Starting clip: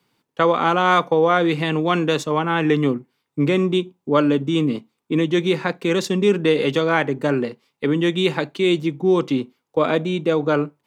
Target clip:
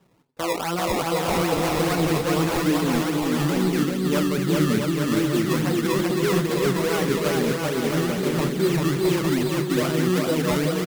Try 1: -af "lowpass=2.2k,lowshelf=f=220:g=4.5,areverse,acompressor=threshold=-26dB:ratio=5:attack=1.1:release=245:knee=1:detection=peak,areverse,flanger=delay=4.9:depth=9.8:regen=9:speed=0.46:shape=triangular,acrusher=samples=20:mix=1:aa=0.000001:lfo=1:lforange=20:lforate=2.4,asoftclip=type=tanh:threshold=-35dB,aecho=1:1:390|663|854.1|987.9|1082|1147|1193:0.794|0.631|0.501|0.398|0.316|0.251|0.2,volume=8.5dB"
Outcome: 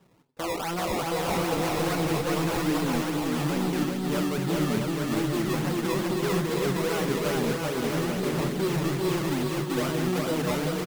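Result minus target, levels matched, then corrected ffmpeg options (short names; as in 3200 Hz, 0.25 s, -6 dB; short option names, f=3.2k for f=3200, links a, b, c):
soft clip: distortion +14 dB
-af "lowpass=2.2k,lowshelf=f=220:g=4.5,areverse,acompressor=threshold=-26dB:ratio=5:attack=1.1:release=245:knee=1:detection=peak,areverse,flanger=delay=4.9:depth=9.8:regen=9:speed=0.46:shape=triangular,acrusher=samples=20:mix=1:aa=0.000001:lfo=1:lforange=20:lforate=2.4,asoftclip=type=tanh:threshold=-23dB,aecho=1:1:390|663|854.1|987.9|1082|1147|1193:0.794|0.631|0.501|0.398|0.316|0.251|0.2,volume=8.5dB"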